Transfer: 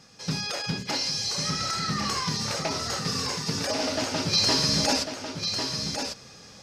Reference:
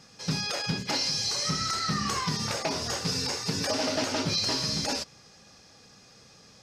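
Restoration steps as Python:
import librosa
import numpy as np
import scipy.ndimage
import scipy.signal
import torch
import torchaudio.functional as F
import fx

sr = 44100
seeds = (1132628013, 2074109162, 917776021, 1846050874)

y = fx.fix_echo_inverse(x, sr, delay_ms=1098, level_db=-6.5)
y = fx.gain(y, sr, db=fx.steps((0.0, 0.0), (4.33, -5.5)))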